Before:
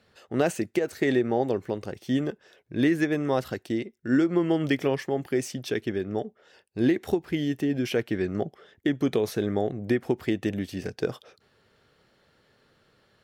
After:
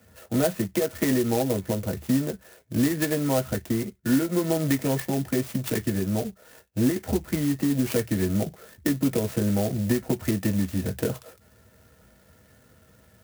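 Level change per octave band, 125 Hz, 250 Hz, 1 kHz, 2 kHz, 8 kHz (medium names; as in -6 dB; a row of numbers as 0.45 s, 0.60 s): +5.5 dB, +1.5 dB, -1.0 dB, -1.5 dB, +9.5 dB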